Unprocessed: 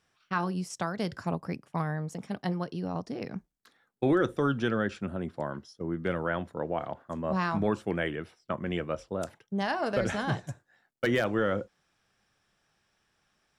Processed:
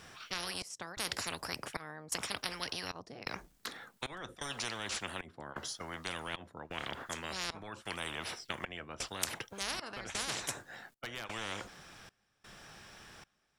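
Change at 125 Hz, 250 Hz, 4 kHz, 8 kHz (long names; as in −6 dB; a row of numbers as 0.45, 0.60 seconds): −16.5, −17.5, +5.5, +9.5 decibels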